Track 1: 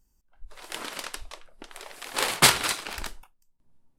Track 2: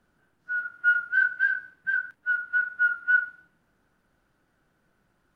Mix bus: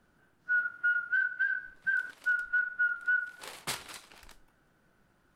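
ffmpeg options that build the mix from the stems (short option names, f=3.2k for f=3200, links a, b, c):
-filter_complex "[0:a]adelay=1250,volume=-18.5dB[a];[1:a]volume=1.5dB[b];[a][b]amix=inputs=2:normalize=0,alimiter=limit=-22dB:level=0:latency=1:release=296"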